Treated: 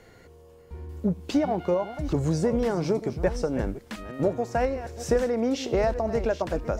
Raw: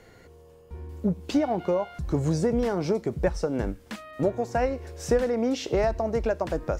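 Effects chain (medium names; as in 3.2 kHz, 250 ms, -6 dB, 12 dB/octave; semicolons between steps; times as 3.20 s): chunks repeated in reverse 428 ms, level -12 dB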